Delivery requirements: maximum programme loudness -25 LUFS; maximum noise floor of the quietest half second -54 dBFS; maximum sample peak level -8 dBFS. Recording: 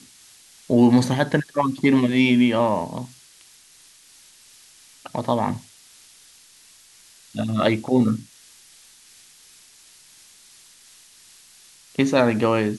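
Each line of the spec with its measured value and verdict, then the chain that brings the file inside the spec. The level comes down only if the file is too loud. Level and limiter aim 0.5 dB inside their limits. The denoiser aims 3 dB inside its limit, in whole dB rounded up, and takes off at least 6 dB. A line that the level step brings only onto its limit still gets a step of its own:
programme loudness -20.5 LUFS: fail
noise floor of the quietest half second -52 dBFS: fail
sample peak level -5.5 dBFS: fail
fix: gain -5 dB

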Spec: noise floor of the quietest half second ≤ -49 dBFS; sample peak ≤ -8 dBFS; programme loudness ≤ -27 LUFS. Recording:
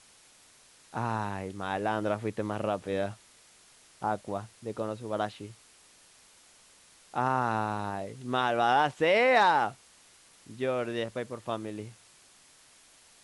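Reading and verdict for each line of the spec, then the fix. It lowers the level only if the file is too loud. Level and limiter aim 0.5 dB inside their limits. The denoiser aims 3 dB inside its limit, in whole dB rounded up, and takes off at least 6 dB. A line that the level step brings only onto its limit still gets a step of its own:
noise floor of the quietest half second -59 dBFS: OK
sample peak -11.5 dBFS: OK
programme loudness -30.0 LUFS: OK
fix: none

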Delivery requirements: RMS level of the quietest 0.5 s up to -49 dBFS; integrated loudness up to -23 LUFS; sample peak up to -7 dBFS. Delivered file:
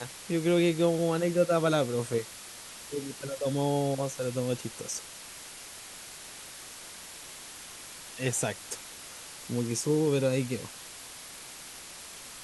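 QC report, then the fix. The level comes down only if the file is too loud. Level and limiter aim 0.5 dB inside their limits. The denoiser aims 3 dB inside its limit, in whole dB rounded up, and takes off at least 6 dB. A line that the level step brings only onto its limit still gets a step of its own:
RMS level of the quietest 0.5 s -45 dBFS: fail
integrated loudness -29.5 LUFS: OK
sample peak -12.5 dBFS: OK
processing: denoiser 7 dB, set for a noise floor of -45 dBFS

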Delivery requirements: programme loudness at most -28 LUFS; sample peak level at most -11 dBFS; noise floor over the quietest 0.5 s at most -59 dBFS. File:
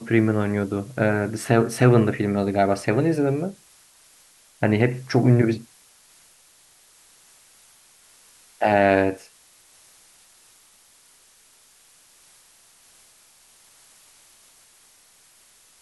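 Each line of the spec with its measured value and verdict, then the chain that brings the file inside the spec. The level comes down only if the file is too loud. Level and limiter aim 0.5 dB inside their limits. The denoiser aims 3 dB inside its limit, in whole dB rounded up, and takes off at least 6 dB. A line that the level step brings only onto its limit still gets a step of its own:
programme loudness -21.0 LUFS: fail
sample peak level -3.0 dBFS: fail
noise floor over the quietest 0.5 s -56 dBFS: fail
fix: gain -7.5 dB; limiter -11.5 dBFS

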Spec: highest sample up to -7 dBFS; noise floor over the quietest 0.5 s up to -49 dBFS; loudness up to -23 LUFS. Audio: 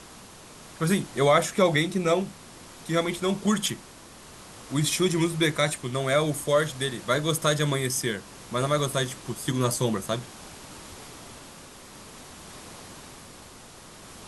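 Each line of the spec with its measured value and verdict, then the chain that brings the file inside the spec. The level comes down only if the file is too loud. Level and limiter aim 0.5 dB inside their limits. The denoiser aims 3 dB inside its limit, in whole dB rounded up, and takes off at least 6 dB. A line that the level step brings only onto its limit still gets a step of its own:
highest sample -8.0 dBFS: OK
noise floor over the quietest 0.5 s -47 dBFS: fail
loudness -25.5 LUFS: OK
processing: denoiser 6 dB, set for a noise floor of -47 dBFS

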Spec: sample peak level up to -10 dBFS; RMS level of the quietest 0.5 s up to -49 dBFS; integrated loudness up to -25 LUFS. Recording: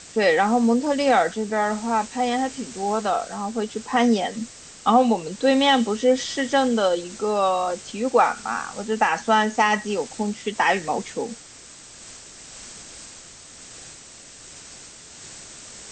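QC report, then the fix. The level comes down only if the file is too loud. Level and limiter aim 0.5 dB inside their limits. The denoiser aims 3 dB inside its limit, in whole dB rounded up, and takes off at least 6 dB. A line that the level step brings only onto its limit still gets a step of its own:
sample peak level -6.0 dBFS: fail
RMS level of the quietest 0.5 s -45 dBFS: fail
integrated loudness -22.0 LUFS: fail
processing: denoiser 6 dB, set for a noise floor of -45 dBFS; gain -3.5 dB; limiter -10.5 dBFS

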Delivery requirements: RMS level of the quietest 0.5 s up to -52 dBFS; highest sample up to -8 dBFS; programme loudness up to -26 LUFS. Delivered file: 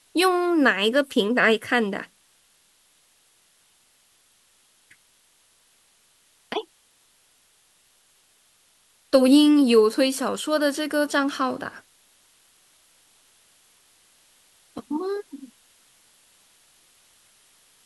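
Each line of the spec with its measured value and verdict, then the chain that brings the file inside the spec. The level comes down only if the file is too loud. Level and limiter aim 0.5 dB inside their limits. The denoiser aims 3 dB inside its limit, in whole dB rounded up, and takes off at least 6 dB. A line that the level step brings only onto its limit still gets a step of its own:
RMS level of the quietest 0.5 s -62 dBFS: OK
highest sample -4.5 dBFS: fail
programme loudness -21.5 LUFS: fail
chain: gain -5 dB

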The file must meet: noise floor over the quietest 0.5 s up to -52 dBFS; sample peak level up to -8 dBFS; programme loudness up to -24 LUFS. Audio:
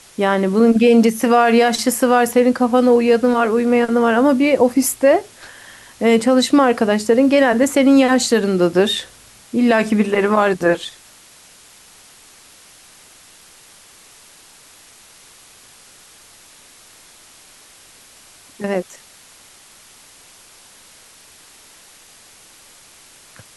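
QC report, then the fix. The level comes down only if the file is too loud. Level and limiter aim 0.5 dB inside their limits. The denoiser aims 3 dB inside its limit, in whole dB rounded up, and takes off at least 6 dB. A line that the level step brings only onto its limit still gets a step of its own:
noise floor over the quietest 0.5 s -46 dBFS: fail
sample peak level -3.5 dBFS: fail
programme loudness -15.0 LUFS: fail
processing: gain -9.5 dB

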